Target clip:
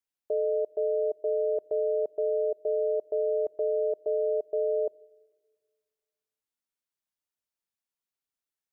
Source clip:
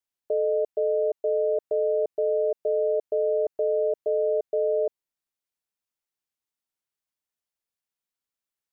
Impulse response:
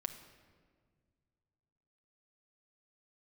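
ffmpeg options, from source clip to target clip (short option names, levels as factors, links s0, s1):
-filter_complex "[0:a]asplit=2[s0][s1];[s1]equalizer=f=290:t=o:w=1.1:g=6.5[s2];[1:a]atrim=start_sample=2205,asetrate=57330,aresample=44100[s3];[s2][s3]afir=irnorm=-1:irlink=0,volume=0.211[s4];[s0][s4]amix=inputs=2:normalize=0,volume=0.596"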